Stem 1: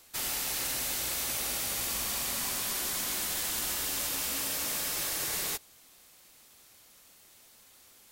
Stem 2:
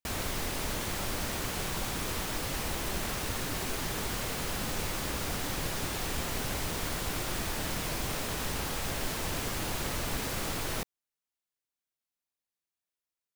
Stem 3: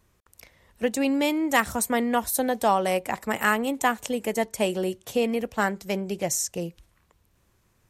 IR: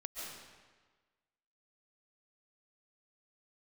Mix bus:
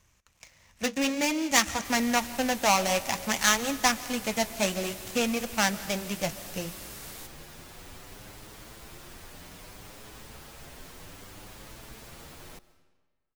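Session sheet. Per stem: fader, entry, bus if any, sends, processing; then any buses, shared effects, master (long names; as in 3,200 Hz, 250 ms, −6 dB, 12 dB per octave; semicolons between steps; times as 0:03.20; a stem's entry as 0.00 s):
−12.0 dB, 1.70 s, no send, no processing
−11.0 dB, 1.75 s, send −13.5 dB, barber-pole flanger 7.7 ms +0.63 Hz
+2.0 dB, 0.00 s, send −12 dB, gap after every zero crossing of 0.16 ms; graphic EQ with 15 bands 400 Hz −9 dB, 2,500 Hz +6 dB, 6,300 Hz +11 dB; flanger 0.55 Hz, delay 1.7 ms, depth 9.9 ms, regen −55%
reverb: on, RT60 1.4 s, pre-delay 100 ms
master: no processing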